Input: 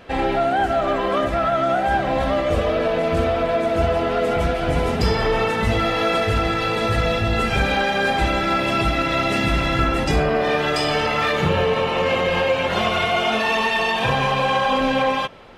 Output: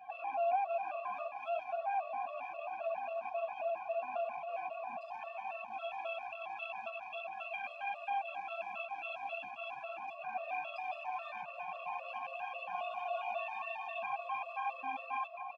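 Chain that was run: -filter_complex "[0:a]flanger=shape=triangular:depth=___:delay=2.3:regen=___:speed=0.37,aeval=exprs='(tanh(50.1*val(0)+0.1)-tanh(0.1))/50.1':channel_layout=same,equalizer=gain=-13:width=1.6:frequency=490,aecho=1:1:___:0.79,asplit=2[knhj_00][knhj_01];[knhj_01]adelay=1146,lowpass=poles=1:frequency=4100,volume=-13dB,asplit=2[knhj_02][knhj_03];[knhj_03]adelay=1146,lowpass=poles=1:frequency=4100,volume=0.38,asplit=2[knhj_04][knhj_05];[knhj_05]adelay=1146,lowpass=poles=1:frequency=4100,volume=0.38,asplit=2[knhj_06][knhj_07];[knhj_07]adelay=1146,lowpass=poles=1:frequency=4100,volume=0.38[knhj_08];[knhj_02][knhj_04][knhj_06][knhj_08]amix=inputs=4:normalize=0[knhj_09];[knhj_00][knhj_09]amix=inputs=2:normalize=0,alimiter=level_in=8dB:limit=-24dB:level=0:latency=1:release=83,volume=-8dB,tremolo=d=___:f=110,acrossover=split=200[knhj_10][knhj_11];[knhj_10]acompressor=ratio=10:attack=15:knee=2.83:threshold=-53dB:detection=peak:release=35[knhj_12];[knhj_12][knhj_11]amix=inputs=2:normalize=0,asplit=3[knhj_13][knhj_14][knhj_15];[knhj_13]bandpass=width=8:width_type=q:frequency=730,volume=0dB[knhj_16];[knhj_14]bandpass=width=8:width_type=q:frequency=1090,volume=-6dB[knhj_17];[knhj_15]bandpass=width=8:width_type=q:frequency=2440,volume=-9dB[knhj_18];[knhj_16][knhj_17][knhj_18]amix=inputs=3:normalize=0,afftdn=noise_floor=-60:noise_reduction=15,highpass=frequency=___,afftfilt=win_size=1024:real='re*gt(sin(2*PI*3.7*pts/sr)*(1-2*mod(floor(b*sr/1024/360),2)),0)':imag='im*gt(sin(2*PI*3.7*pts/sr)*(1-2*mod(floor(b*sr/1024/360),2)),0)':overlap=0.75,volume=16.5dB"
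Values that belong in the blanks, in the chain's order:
5.7, 74, 1.2, 0.462, 46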